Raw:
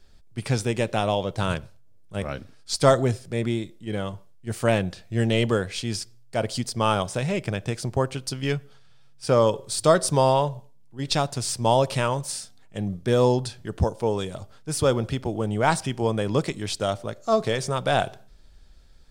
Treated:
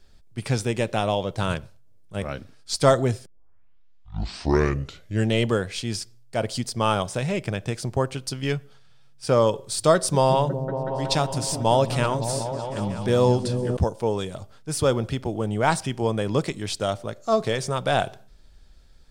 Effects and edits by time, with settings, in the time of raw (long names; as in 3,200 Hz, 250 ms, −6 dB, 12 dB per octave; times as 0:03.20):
0:03.26: tape start 2.04 s
0:09.94–0:13.77: echo whose low-pass opens from repeat to repeat 185 ms, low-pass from 200 Hz, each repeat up 1 octave, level −3 dB